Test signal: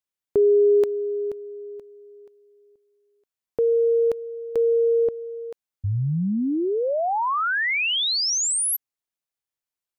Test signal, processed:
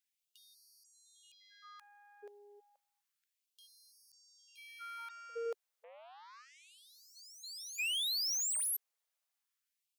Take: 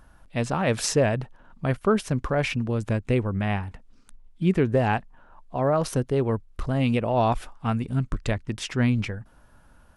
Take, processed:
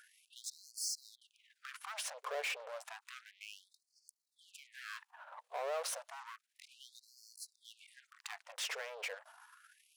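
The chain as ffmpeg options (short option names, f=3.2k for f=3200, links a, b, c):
-af "acompressor=threshold=-31dB:ratio=3:attack=0.11:release=35:knee=6:detection=peak,asoftclip=type=tanh:threshold=-37dB,aeval=exprs='0.0141*(cos(1*acos(clip(val(0)/0.0141,-1,1)))-cos(1*PI/2))+0.000631*(cos(2*acos(clip(val(0)/0.0141,-1,1)))-cos(2*PI/2))+0.0002*(cos(4*acos(clip(val(0)/0.0141,-1,1)))-cos(4*PI/2))+0.0001*(cos(7*acos(clip(val(0)/0.0141,-1,1)))-cos(7*PI/2))+0.000794*(cos(8*acos(clip(val(0)/0.0141,-1,1)))-cos(8*PI/2))':c=same,afftfilt=real='re*gte(b*sr/1024,400*pow(4300/400,0.5+0.5*sin(2*PI*0.31*pts/sr)))':imag='im*gte(b*sr/1024,400*pow(4300/400,0.5+0.5*sin(2*PI*0.31*pts/sr)))':win_size=1024:overlap=0.75,volume=3dB"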